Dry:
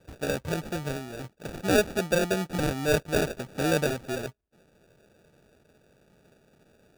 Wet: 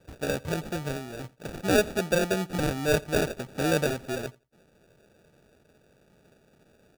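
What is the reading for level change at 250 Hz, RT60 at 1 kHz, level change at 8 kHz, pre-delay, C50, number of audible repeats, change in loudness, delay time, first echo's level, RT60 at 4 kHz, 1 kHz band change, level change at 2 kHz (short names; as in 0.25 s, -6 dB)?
0.0 dB, none, 0.0 dB, none, none, 1, 0.0 dB, 86 ms, -23.5 dB, none, 0.0 dB, 0.0 dB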